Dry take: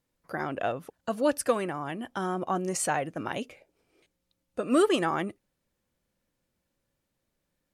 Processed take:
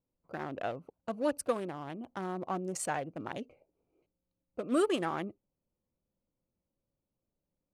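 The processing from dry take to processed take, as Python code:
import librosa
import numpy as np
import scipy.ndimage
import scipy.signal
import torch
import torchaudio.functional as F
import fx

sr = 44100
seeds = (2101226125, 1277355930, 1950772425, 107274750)

y = fx.wiener(x, sr, points=25)
y = y * librosa.db_to_amplitude(-5.5)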